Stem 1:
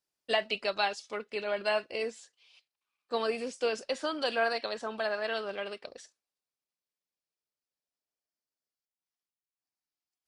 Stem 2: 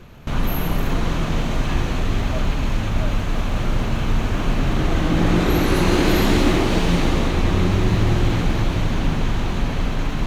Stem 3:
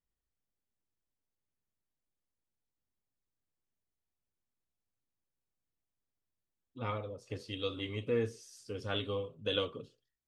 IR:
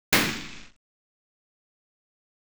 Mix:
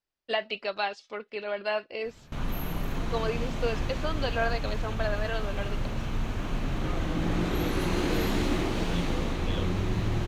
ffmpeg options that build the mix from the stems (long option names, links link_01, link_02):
-filter_complex "[0:a]lowpass=4000,volume=0dB[link_01];[1:a]adelay=2050,volume=-10.5dB[link_02];[2:a]volume=-6dB[link_03];[link_01][link_02][link_03]amix=inputs=3:normalize=0"